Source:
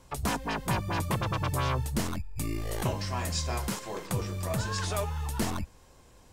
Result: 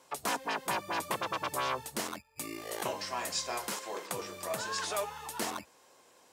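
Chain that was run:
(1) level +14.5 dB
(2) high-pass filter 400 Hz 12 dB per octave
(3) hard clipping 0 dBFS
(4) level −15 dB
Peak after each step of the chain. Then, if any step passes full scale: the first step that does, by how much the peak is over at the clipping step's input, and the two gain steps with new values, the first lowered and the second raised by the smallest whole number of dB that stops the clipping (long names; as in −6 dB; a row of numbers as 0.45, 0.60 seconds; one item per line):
−1.0, −4.5, −4.5, −19.5 dBFS
no step passes full scale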